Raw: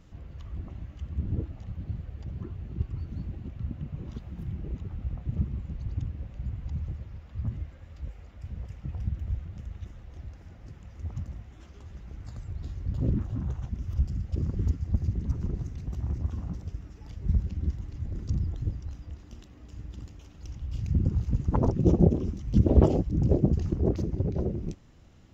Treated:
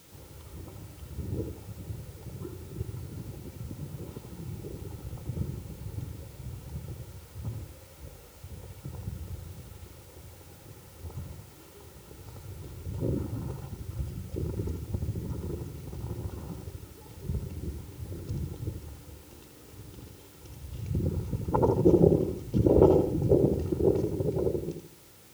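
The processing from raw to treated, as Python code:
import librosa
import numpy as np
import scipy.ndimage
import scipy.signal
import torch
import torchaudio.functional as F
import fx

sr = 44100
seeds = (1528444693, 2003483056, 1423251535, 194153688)

p1 = scipy.signal.sosfilt(scipy.signal.butter(2, 170.0, 'highpass', fs=sr, output='sos'), x)
p2 = fx.high_shelf(p1, sr, hz=2100.0, db=-10.0)
p3 = fx.notch(p2, sr, hz=1700.0, q=6.1)
p4 = p3 + 0.61 * np.pad(p3, (int(2.2 * sr / 1000.0), 0))[:len(p3)]
p5 = fx.quant_dither(p4, sr, seeds[0], bits=10, dither='triangular')
p6 = p5 + fx.echo_feedback(p5, sr, ms=81, feedback_pct=37, wet_db=-7, dry=0)
y = F.gain(torch.from_numpy(p6), 3.0).numpy()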